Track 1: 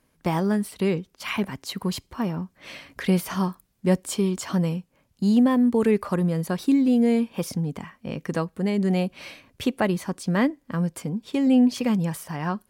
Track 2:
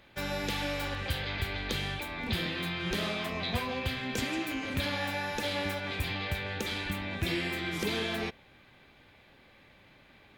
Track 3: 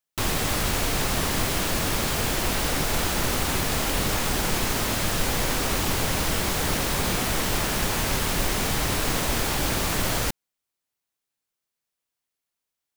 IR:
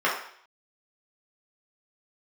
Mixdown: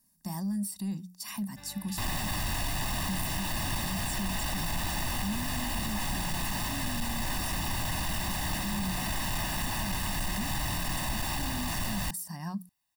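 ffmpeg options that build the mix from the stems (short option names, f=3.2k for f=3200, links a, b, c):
-filter_complex "[0:a]equalizer=f=200:w=3.8:g=15,bandreject=f=60:t=h:w=6,bandreject=f=120:t=h:w=6,bandreject=f=180:t=h:w=6,aexciter=amount=6.7:drive=6.8:freq=4.4k,volume=-16.5dB[a];[1:a]adelay=1400,volume=-18.5dB[b];[2:a]asoftclip=type=tanh:threshold=-20dB,adelay=1800,volume=1.5dB[c];[a][c]amix=inputs=2:normalize=0,asoftclip=type=tanh:threshold=-20.5dB,alimiter=level_in=6.5dB:limit=-24dB:level=0:latency=1:release=76,volume=-6.5dB,volume=0dB[d];[b][d]amix=inputs=2:normalize=0,bandreject=f=6.5k:w=15,aecho=1:1:1.1:0.98"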